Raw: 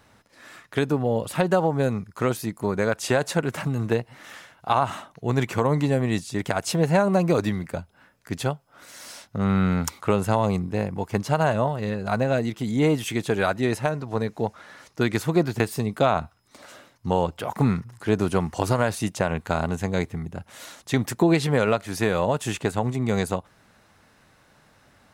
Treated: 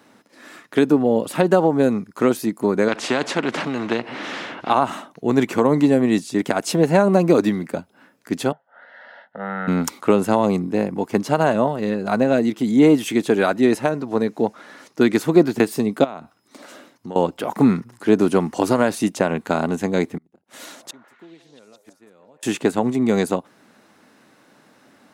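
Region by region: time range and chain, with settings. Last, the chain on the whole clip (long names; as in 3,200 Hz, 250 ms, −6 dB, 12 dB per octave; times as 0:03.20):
0:02.88–0:04.70: mu-law and A-law mismatch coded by mu + low-pass filter 2,800 Hz + every bin compressed towards the loudest bin 2 to 1
0:08.52–0:09.68: one scale factor per block 7 bits + loudspeaker in its box 320–2,500 Hz, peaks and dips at 360 Hz −8 dB, 980 Hz +8 dB, 1,800 Hz +7 dB + phaser with its sweep stopped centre 1,600 Hz, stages 8
0:16.04–0:17.16: high-pass filter 56 Hz + downward compressor 3 to 1, threshold −36 dBFS
0:20.17–0:22.43: gate with flip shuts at −24 dBFS, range −34 dB + echo through a band-pass that steps 170 ms, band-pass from 640 Hz, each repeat 0.7 octaves, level −6 dB
whole clip: high-pass filter 210 Hz 12 dB per octave; parametric band 270 Hz +9 dB 1.3 octaves; level +2.5 dB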